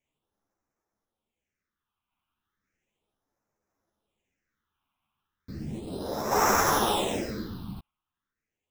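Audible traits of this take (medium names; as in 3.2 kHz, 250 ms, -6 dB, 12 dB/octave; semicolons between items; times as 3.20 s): aliases and images of a low sample rate 4.5 kHz, jitter 0%; phasing stages 6, 0.35 Hz, lowest notch 480–3100 Hz; random-step tremolo 1.9 Hz; a shimmering, thickened sound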